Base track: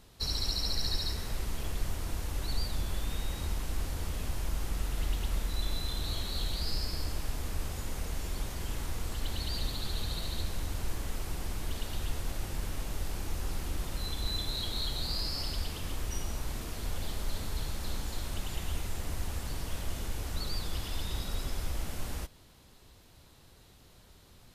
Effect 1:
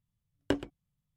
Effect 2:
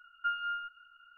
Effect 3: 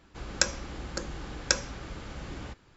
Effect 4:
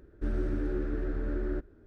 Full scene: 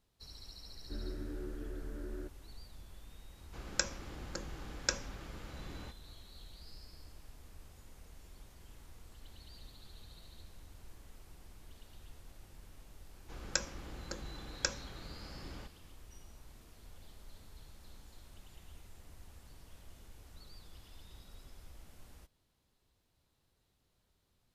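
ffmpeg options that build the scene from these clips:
ffmpeg -i bed.wav -i cue0.wav -i cue1.wav -i cue2.wav -i cue3.wav -filter_complex "[3:a]asplit=2[link_01][link_02];[0:a]volume=-19.5dB[link_03];[4:a]atrim=end=1.86,asetpts=PTS-STARTPTS,volume=-11dB,afade=type=in:duration=0.004:curve=hsin,afade=type=out:start_time=1.856:duration=0.004:curve=hsin,adelay=680[link_04];[link_01]atrim=end=2.76,asetpts=PTS-STARTPTS,volume=-7.5dB,afade=type=in:duration=0.004:curve=hsin,afade=type=out:start_time=2.756:duration=0.004:curve=hsin,adelay=3380[link_05];[link_02]atrim=end=2.76,asetpts=PTS-STARTPTS,volume=-8.5dB,afade=type=in:duration=0.004:curve=hsin,afade=type=out:start_time=2.756:duration=0.004:curve=hsin,adelay=13140[link_06];[link_03][link_04][link_05][link_06]amix=inputs=4:normalize=0" out.wav

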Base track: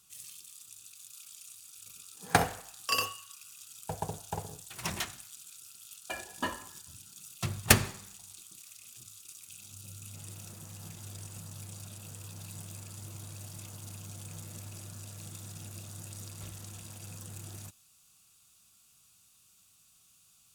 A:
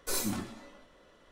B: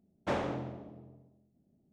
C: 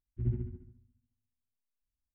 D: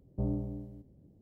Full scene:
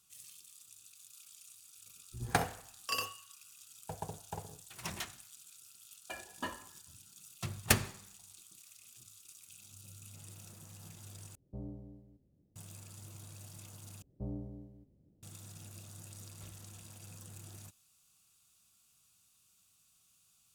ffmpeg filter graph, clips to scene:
ffmpeg -i bed.wav -i cue0.wav -i cue1.wav -i cue2.wav -i cue3.wav -filter_complex "[4:a]asplit=2[link_01][link_02];[0:a]volume=-6dB[link_03];[link_02]acontrast=53[link_04];[link_03]asplit=3[link_05][link_06][link_07];[link_05]atrim=end=11.354[link_08];[link_01]atrim=end=1.21,asetpts=PTS-STARTPTS,volume=-12dB[link_09];[link_06]atrim=start=12.556:end=14.024[link_10];[link_04]atrim=end=1.21,asetpts=PTS-STARTPTS,volume=-14.5dB[link_11];[link_07]atrim=start=15.226[link_12];[3:a]atrim=end=2.14,asetpts=PTS-STARTPTS,volume=-11.5dB,afade=type=in:duration=0.004:curve=hsin,afade=type=out:start_time=2.136:duration=0.004:curve=hsin,adelay=1950[link_13];[link_08][link_09]acrossfade=duration=0.004:curve1=hsin:curve2=hsin[link_14];[link_14][link_10]acrossfade=duration=0.004:curve1=hsin:curve2=hsin[link_15];[link_15][link_11]acrossfade=duration=0.004:curve1=hsin:curve2=hsin[link_16];[link_16][link_12]acrossfade=duration=0.004:curve1=hsin:curve2=hsin[link_17];[link_17][link_13]amix=inputs=2:normalize=0" out.wav

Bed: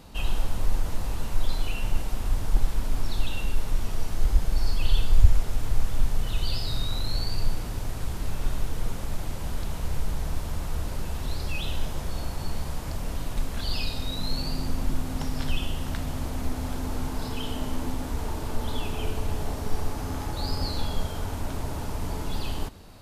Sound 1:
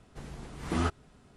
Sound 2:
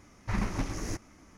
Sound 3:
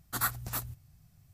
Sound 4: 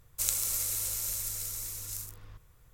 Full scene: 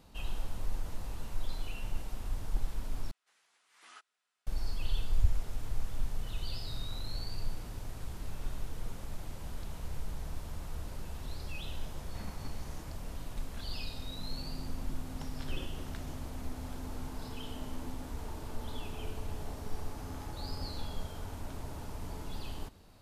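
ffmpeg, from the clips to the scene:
ffmpeg -i bed.wav -i cue0.wav -i cue1.wav -filter_complex "[2:a]asplit=2[link_01][link_02];[0:a]volume=-10.5dB[link_03];[1:a]highpass=1500[link_04];[link_02]aeval=exprs='val(0)*sin(2*PI*330*n/s)':channel_layout=same[link_05];[link_03]asplit=2[link_06][link_07];[link_06]atrim=end=3.114[link_08];[link_04]atrim=end=1.36,asetpts=PTS-STARTPTS,volume=-15dB[link_09];[link_07]atrim=start=4.466[link_10];[link_01]atrim=end=1.37,asetpts=PTS-STARTPTS,volume=-17dB,afade=type=in:duration=0.004:curve=hsin,afade=type=out:start_time=1.366:duration=0.004:curve=hsin,adelay=523026S[link_11];[link_05]atrim=end=1.37,asetpts=PTS-STARTPTS,volume=-16.5dB,afade=type=in:duration=0.004:curve=hsin,afade=type=out:start_time=1.366:duration=0.004:curve=hsin,adelay=15190[link_12];[link_08][link_09]acrossfade=duration=0.004:curve1=hsin:curve2=hsin[link_13];[link_13][link_10]acrossfade=duration=0.004:curve1=hsin:curve2=hsin[link_14];[link_14][link_11][link_12]amix=inputs=3:normalize=0" out.wav

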